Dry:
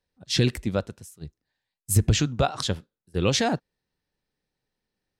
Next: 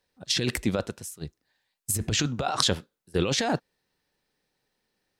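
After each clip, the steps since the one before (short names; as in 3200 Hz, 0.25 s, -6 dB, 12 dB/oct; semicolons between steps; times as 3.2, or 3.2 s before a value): low shelf 190 Hz -10 dB; negative-ratio compressor -29 dBFS, ratio -1; gain +4 dB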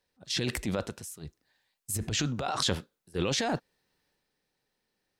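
transient shaper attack -6 dB, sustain +4 dB; gain -3 dB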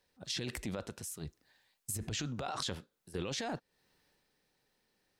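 compressor 3:1, threshold -42 dBFS, peak gain reduction 14 dB; gain +3 dB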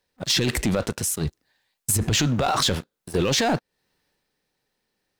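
sample leveller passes 3; gain +6.5 dB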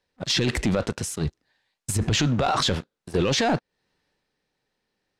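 air absorption 59 m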